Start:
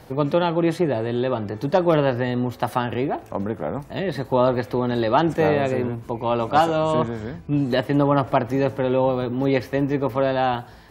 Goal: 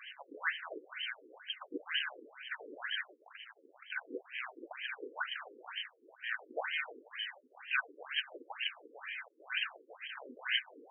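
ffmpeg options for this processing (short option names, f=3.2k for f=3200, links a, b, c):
-filter_complex "[0:a]afftfilt=real='real(if(lt(b,272),68*(eq(floor(b/68),0)*3+eq(floor(b/68),1)*2+eq(floor(b/68),2)*1+eq(floor(b/68),3)*0)+mod(b,68),b),0)':imag='imag(if(lt(b,272),68*(eq(floor(b/68),0)*3+eq(floor(b/68),1)*2+eq(floor(b/68),2)*1+eq(floor(b/68),3)*0)+mod(b,68),b),0)':win_size=2048:overlap=0.75,flanger=delay=3.6:depth=7.5:regen=75:speed=1.2:shape=triangular,acrossover=split=480|990[a][b][c];[c]volume=27.5dB,asoftclip=hard,volume=-27.5dB[d];[a][b][d]amix=inputs=3:normalize=0,bandreject=f=50:t=h:w=6,bandreject=f=100:t=h:w=6,bandreject=f=150:t=h:w=6,afftfilt=real='re*between(b*sr/1024,350*pow(2300/350,0.5+0.5*sin(2*PI*2.1*pts/sr))/1.41,350*pow(2300/350,0.5+0.5*sin(2*PI*2.1*pts/sr))*1.41)':imag='im*between(b*sr/1024,350*pow(2300/350,0.5+0.5*sin(2*PI*2.1*pts/sr))/1.41,350*pow(2300/350,0.5+0.5*sin(2*PI*2.1*pts/sr))*1.41)':win_size=1024:overlap=0.75,volume=18dB"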